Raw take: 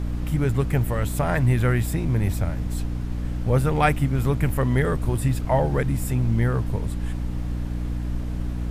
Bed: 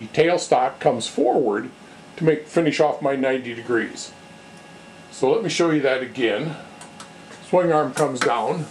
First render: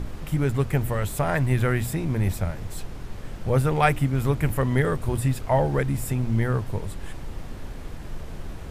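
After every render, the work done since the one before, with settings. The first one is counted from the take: notches 60/120/180/240/300 Hz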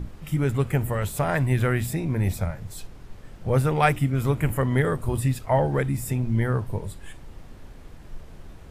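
noise print and reduce 8 dB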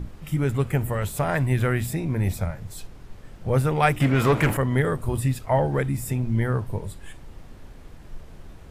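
4–4.57 overdrive pedal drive 25 dB, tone 2000 Hz, clips at -9 dBFS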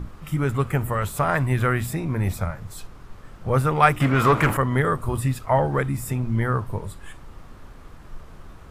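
bell 1200 Hz +9 dB 0.67 oct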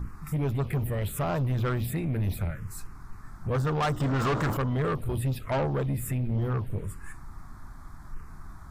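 envelope phaser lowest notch 420 Hz, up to 2400 Hz, full sweep at -16 dBFS; soft clip -23 dBFS, distortion -8 dB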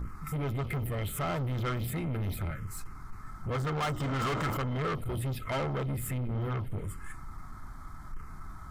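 soft clip -29.5 dBFS, distortion -13 dB; small resonant body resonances 1300/2100/3100 Hz, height 11 dB, ringing for 45 ms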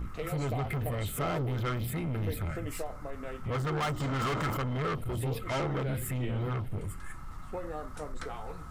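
add bed -21.5 dB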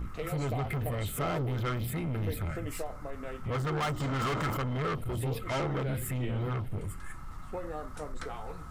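nothing audible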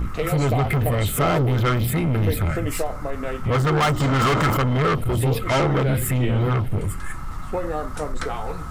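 gain +12 dB

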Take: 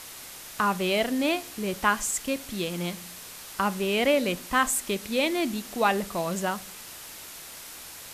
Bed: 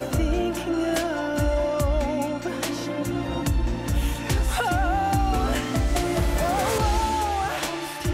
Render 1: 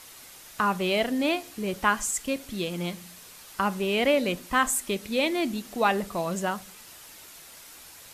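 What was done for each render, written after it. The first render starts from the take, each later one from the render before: denoiser 6 dB, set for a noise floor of -43 dBFS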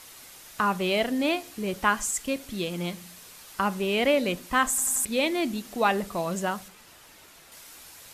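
4.69 stutter in place 0.09 s, 4 plays; 6.68–7.52 high shelf 3900 Hz -8 dB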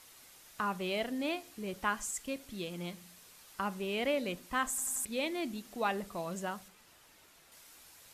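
gain -9.5 dB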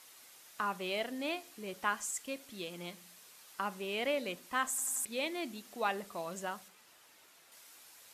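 HPF 360 Hz 6 dB/oct

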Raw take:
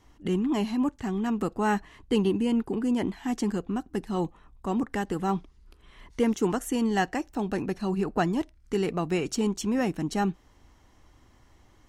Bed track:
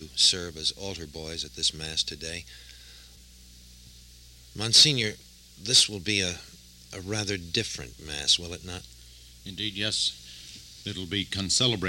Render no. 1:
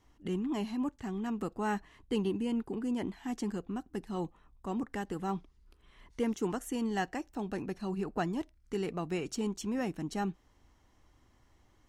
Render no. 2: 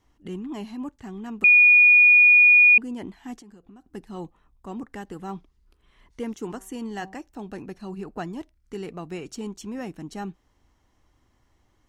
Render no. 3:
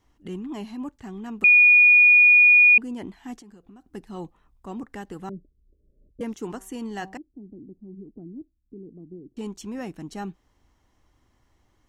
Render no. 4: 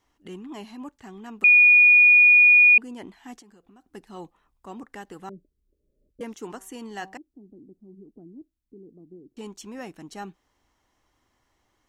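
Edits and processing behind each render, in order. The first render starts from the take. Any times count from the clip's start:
gain -7.5 dB
1.44–2.78 bleep 2450 Hz -10.5 dBFS; 3.37–3.92 compressor 16:1, threshold -44 dBFS; 6.34–7.17 de-hum 191.1 Hz, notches 6
5.29–6.21 Chebyshev low-pass 610 Hz, order 10; 7.17–9.37 ladder low-pass 360 Hz, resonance 45%
low shelf 260 Hz -11 dB

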